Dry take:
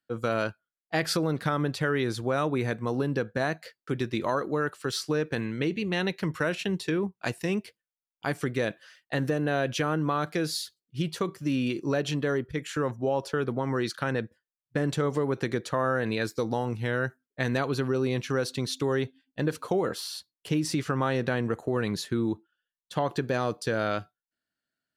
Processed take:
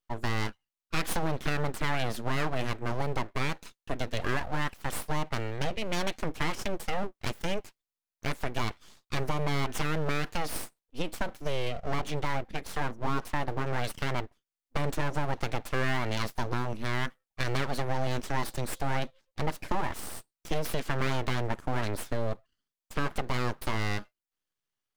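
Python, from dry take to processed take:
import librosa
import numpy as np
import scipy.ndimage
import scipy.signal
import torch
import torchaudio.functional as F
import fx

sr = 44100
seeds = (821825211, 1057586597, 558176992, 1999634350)

y = fx.lowpass(x, sr, hz=fx.line((11.69, 1200.0), (12.15, 3100.0)), slope=6, at=(11.69, 12.15), fade=0.02)
y = np.abs(y)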